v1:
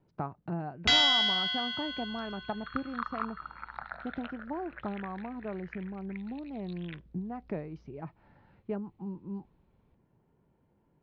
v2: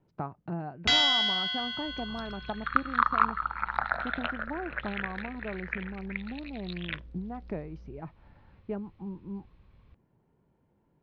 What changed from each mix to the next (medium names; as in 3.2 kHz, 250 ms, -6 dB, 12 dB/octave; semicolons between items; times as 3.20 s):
second sound +12.0 dB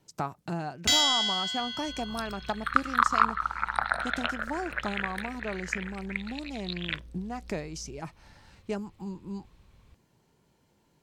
speech: remove tape spacing loss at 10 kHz 38 dB; first sound -6.5 dB; master: remove distance through air 260 m